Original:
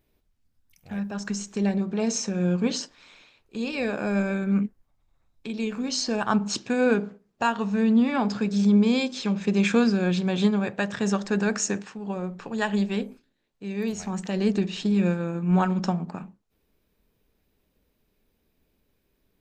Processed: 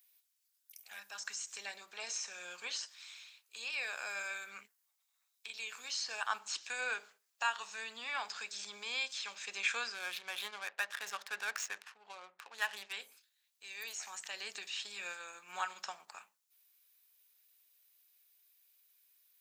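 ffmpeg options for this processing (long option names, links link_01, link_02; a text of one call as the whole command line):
ffmpeg -i in.wav -filter_complex "[0:a]asettb=1/sr,asplit=3[link_01][link_02][link_03];[link_01]atrim=end=9.944[link_04];[link_02]atrim=start=9.94:end=12.93,asetpts=PTS-STARTPTS,afade=type=in:duration=0.004:curve=qsin,afade=type=out:start_time=2.986:duration=0.004:curve=qsin,adynamicsmooth=sensitivity=7:basefreq=1300[link_05];[link_03]atrim=start=12.926[link_06];[link_04][link_05]acrossfade=duration=0.004:curve1=hsin:curve2=qsin[link_07];[link_07][link_06]acrossfade=duration=0.004:curve1=qsin:curve2=hsin,acrossover=split=2800[link_08][link_09];[link_09]acompressor=threshold=-48dB:ratio=4:attack=1:release=60[link_10];[link_08][link_10]amix=inputs=2:normalize=0,highpass=860,aderivative,volume=8dB" out.wav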